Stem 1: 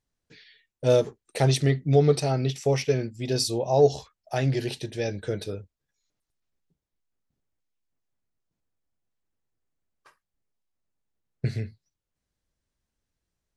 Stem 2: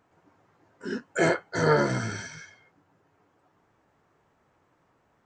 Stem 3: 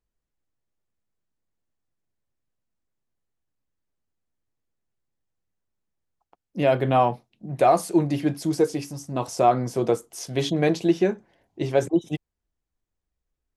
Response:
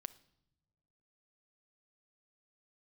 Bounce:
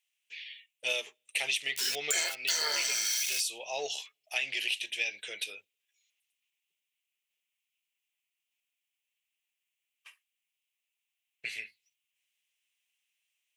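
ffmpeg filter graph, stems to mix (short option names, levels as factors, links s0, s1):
-filter_complex "[0:a]highshelf=f=3500:t=q:w=3:g=-8.5,volume=0.355,asplit=2[s0][s1];[s1]volume=0.119[s2];[1:a]aeval=exprs='val(0)*gte(abs(val(0)),0.00794)':c=same,adelay=950,volume=0.891,asplit=2[s3][s4];[s4]volume=0.0944[s5];[3:a]atrim=start_sample=2205[s6];[s2][s5]amix=inputs=2:normalize=0[s7];[s7][s6]afir=irnorm=-1:irlink=0[s8];[s0][s3][s8]amix=inputs=3:normalize=0,aexciter=amount=4.5:drive=9.8:freq=2200,highpass=850,acompressor=threshold=0.0447:ratio=10"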